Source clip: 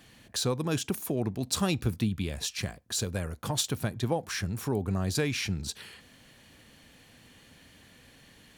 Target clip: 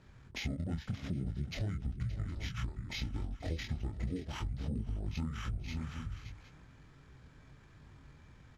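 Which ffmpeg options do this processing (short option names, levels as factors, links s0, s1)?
-filter_complex "[0:a]flanger=delay=20:depth=7.2:speed=0.85,asetrate=24046,aresample=44100,atempo=1.83401,lowshelf=f=450:g=10.5,acrusher=samples=5:mix=1:aa=0.000001,asplit=2[s0][s1];[s1]aecho=0:1:485|571|764:0.133|0.251|0.119[s2];[s0][s2]amix=inputs=2:normalize=0,acompressor=threshold=0.0355:ratio=6,lowpass=5900,equalizer=f=960:w=7.3:g=-7,volume=0.596"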